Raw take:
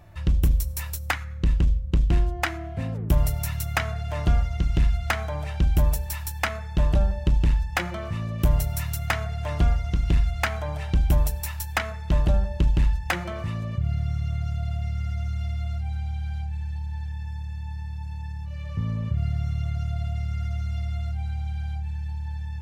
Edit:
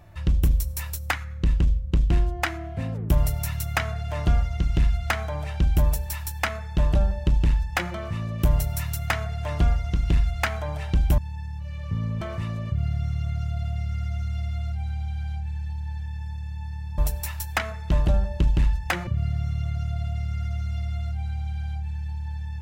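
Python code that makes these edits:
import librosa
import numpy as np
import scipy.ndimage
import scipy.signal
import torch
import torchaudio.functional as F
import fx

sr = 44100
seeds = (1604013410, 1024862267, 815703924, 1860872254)

y = fx.edit(x, sr, fx.swap(start_s=11.18, length_s=2.09, other_s=18.04, other_length_s=1.03), tone=tone)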